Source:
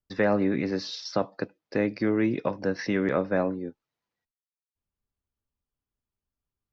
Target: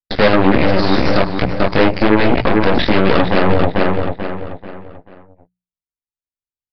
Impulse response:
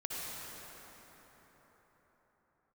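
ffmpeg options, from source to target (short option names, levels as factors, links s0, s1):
-filter_complex "[0:a]aeval=exprs='0.282*sin(PI/2*1.41*val(0)/0.282)':c=same,agate=range=0.0501:threshold=0.00562:ratio=16:detection=peak,flanger=delay=16:depth=6.7:speed=1.3,aeval=exprs='0.335*(cos(1*acos(clip(val(0)/0.335,-1,1)))-cos(1*PI/2))+0.0376*(cos(7*acos(clip(val(0)/0.335,-1,1)))-cos(7*PI/2))+0.075*(cos(8*acos(clip(val(0)/0.335,-1,1)))-cos(8*PI/2))':c=same,bandreject=f=60:t=h:w=6,bandreject=f=120:t=h:w=6,bandreject=f=180:t=h:w=6,asplit=2[s0][s1];[s1]adelay=438,lowpass=f=3900:p=1,volume=0.282,asplit=2[s2][s3];[s3]adelay=438,lowpass=f=3900:p=1,volume=0.38,asplit=2[s4][s5];[s5]adelay=438,lowpass=f=3900:p=1,volume=0.38,asplit=2[s6][s7];[s7]adelay=438,lowpass=f=3900:p=1,volume=0.38[s8];[s2][s4][s6][s8]amix=inputs=4:normalize=0[s9];[s0][s9]amix=inputs=2:normalize=0,aresample=11025,aresample=44100,alimiter=level_in=9.44:limit=0.891:release=50:level=0:latency=1,volume=0.891"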